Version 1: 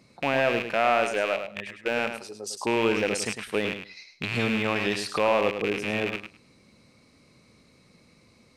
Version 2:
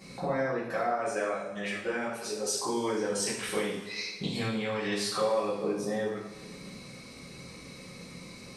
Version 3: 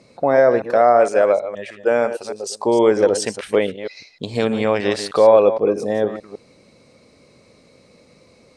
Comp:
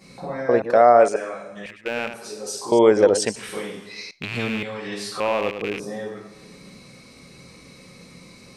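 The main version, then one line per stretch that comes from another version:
2
0:00.49–0:01.16: punch in from 3
0:01.66–0:02.14: punch in from 1
0:02.72–0:03.36: punch in from 3
0:04.11–0:04.63: punch in from 1
0:05.20–0:05.80: punch in from 1

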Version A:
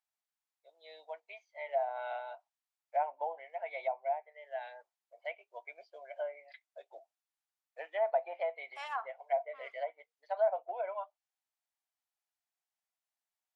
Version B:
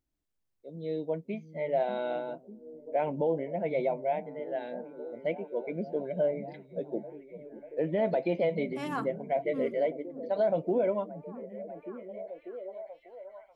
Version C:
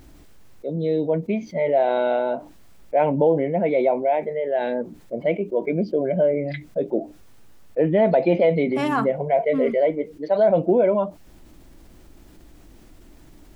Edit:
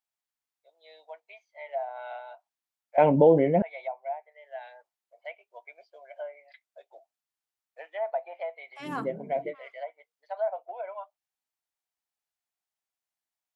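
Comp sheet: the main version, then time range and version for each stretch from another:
A
0:02.98–0:03.62: punch in from C
0:08.84–0:09.50: punch in from B, crossfade 0.10 s

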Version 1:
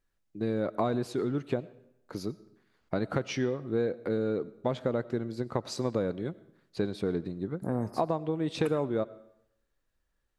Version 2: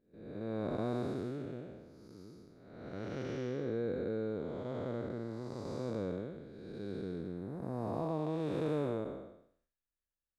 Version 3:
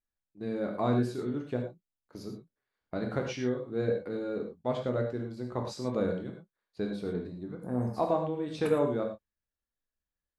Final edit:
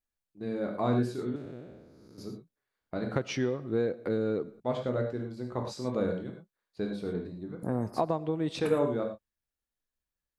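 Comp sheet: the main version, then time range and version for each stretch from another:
3
0:01.36–0:02.18: punch in from 2
0:03.16–0:04.60: punch in from 1
0:07.63–0:08.60: punch in from 1

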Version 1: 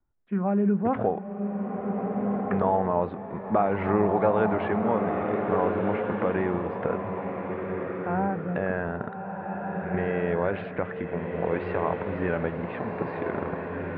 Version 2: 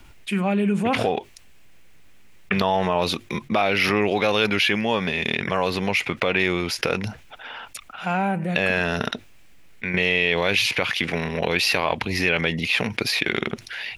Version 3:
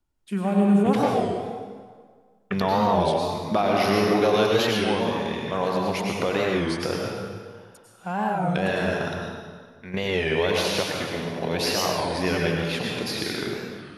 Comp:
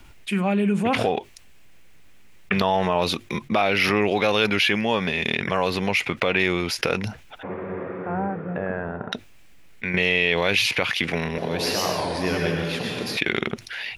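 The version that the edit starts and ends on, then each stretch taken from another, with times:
2
0:07.43–0:09.12: punch in from 1
0:11.38–0:13.17: punch in from 3

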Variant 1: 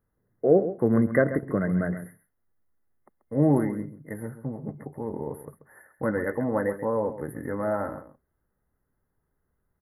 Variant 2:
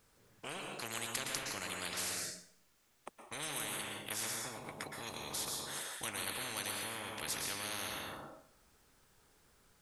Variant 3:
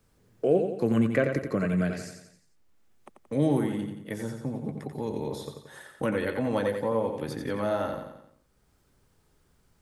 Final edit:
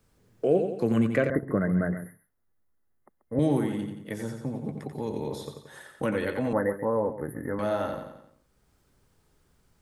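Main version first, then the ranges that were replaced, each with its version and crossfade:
3
0:01.30–0:03.39: punch in from 1
0:06.53–0:07.59: punch in from 1
not used: 2

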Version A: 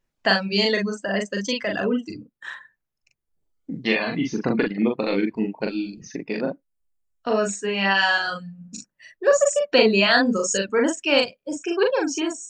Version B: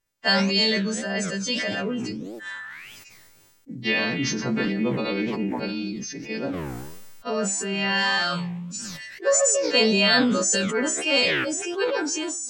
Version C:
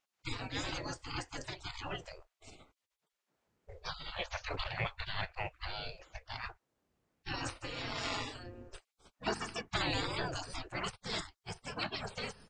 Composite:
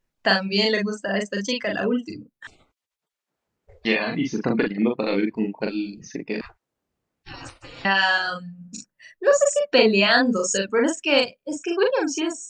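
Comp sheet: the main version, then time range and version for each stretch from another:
A
0:02.47–0:03.85: punch in from C
0:06.41–0:07.85: punch in from C
not used: B

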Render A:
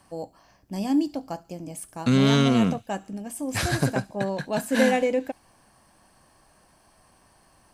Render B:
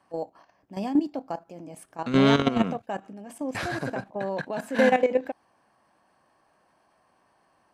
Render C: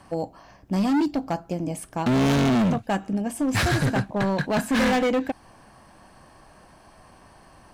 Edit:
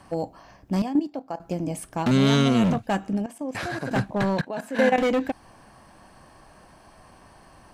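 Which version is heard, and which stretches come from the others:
C
0:00.82–0:01.40: punch in from B
0:02.11–0:02.64: punch in from A
0:03.26–0:03.91: punch in from B
0:04.41–0:04.98: punch in from B

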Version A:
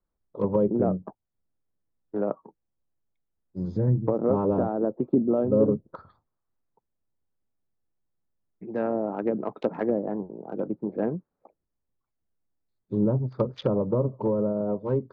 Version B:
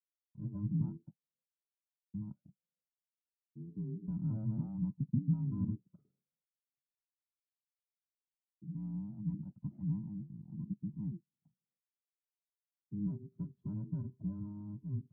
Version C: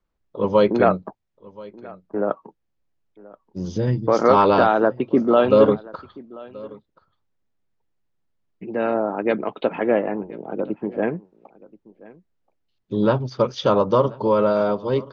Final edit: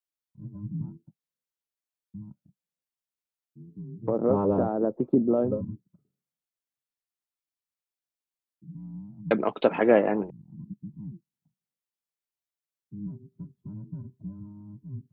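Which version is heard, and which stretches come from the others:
B
0:04.06–0:05.54: punch in from A, crossfade 0.16 s
0:09.31–0:10.30: punch in from C

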